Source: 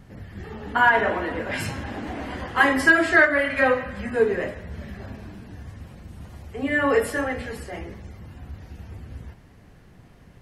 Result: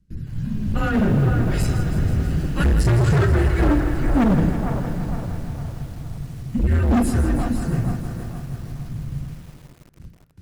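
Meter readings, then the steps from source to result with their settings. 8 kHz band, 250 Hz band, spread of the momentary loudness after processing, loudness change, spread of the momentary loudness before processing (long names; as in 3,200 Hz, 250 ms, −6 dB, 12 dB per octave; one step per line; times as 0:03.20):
+3.0 dB, +8.0 dB, 15 LU, 0.0 dB, 24 LU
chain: noise gate with hold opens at −37 dBFS
drawn EQ curve 110 Hz 0 dB, 370 Hz +13 dB, 910 Hz −21 dB, 5,700 Hz −3 dB
frequency shifter −210 Hz
hard clipping −21.5 dBFS, distortion −4 dB
on a send: delay with a band-pass on its return 460 ms, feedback 43%, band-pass 880 Hz, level −5 dB
on the sum: feedback echo at a low word length 162 ms, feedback 80%, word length 8 bits, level −11 dB
level +6.5 dB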